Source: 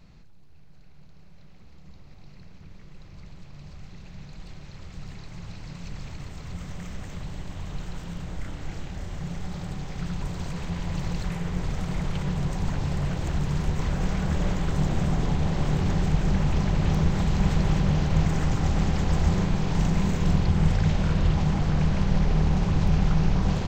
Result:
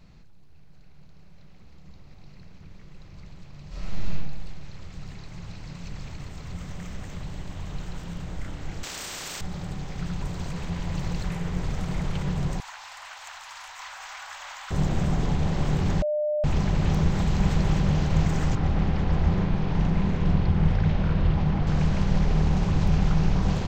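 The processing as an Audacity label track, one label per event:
3.680000	4.120000	reverb throw, RT60 1.3 s, DRR -10 dB
8.830000	9.410000	spectrum-flattening compressor 10:1
12.600000	14.710000	inverse Chebyshev high-pass stop band from 430 Hz
16.020000	16.440000	bleep 601 Hz -22.5 dBFS
18.550000	21.670000	distance through air 190 m

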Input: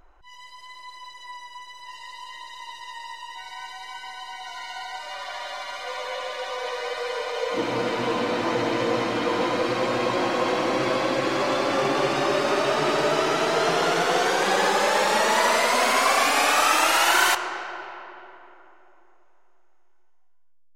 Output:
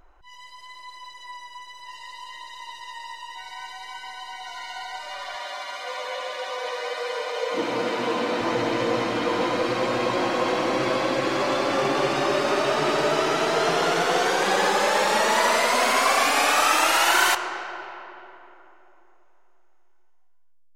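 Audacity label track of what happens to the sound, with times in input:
5.350000	8.410000	high-pass 170 Hz

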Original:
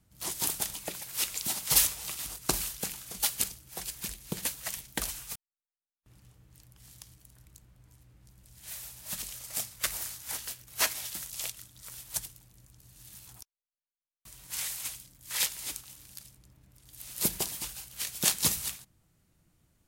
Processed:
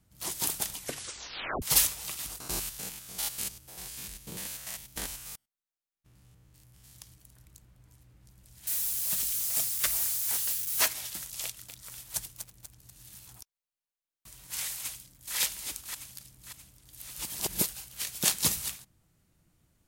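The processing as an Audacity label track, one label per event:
0.750000	0.750000	tape stop 0.87 s
2.400000	6.950000	spectrogram pixelated in time every 100 ms
8.670000	10.880000	zero-crossing glitches of -28.5 dBFS
11.440000	13.320000	bit-crushed delay 243 ms, feedback 55%, word length 7-bit, level -7 dB
14.690000	15.360000	echo throw 580 ms, feedback 45%, level -2.5 dB
17.180000	17.690000	reverse

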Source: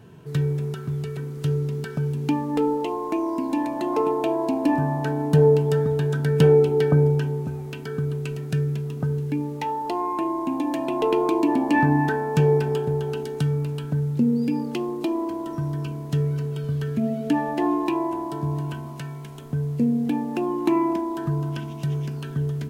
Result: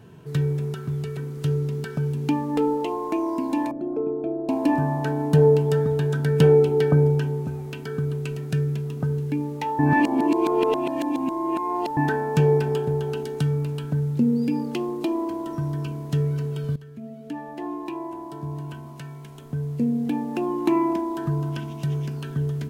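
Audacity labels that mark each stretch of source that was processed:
3.710000	4.490000	boxcar filter over 46 samples
9.790000	11.970000	reverse
16.760000	20.730000	fade in, from -17 dB

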